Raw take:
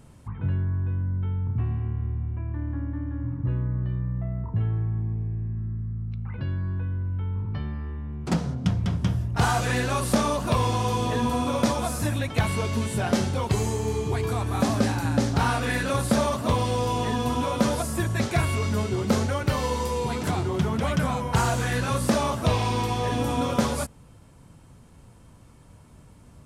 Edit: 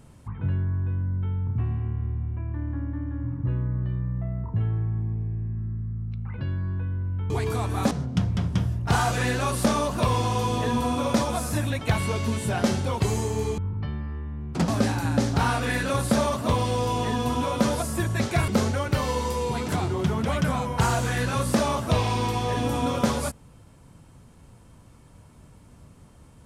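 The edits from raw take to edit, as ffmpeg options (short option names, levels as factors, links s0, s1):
-filter_complex "[0:a]asplit=6[s0][s1][s2][s3][s4][s5];[s0]atrim=end=7.302[s6];[s1]atrim=start=14.068:end=14.682[s7];[s2]atrim=start=8.398:end=14.072[s8];[s3]atrim=start=7.298:end=8.402[s9];[s4]atrim=start=14.678:end=18.482[s10];[s5]atrim=start=19.028[s11];[s6][s7]acrossfade=d=0.004:c1=hsin:c2=hsin[s12];[s12][s8]acrossfade=d=0.004:c1=hsin:c2=hsin[s13];[s13][s9]acrossfade=d=0.004:c1=hsin:c2=hsin[s14];[s14][s10]acrossfade=d=0.004:c1=hsin:c2=hsin[s15];[s15][s11]acrossfade=d=0.004:c1=hsin:c2=hsin"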